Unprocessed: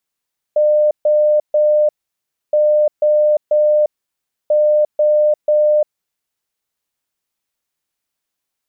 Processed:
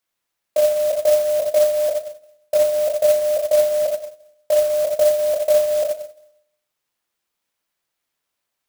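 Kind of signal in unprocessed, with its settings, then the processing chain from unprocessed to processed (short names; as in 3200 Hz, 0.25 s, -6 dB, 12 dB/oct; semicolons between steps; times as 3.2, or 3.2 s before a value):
beep pattern sine 602 Hz, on 0.35 s, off 0.14 s, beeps 3, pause 0.64 s, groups 3, -9.5 dBFS
HPF 430 Hz 6 dB/oct; shoebox room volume 92 m³, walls mixed, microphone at 0.78 m; clock jitter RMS 0.042 ms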